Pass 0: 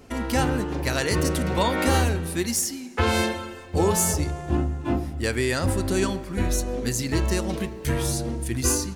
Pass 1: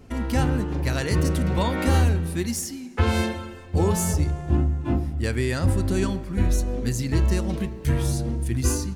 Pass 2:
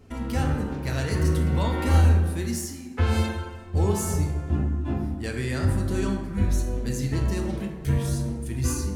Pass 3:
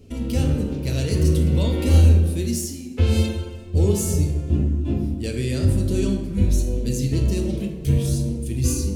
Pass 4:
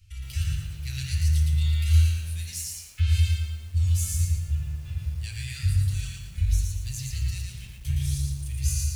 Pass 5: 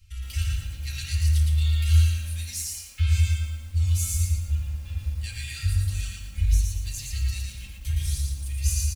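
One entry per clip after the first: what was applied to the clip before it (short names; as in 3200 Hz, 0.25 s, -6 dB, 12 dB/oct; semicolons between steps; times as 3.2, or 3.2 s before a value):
tone controls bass +8 dB, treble -2 dB; gain -3.5 dB
plate-style reverb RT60 1.3 s, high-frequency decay 0.45×, DRR 1.5 dB; gain -5 dB
band shelf 1200 Hz -13 dB; gain +4.5 dB
inverse Chebyshev band-stop 260–670 Hz, stop band 60 dB; lo-fi delay 0.115 s, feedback 35%, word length 8-bit, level -3 dB; gain -4.5 dB
comb 3.7 ms, depth 78%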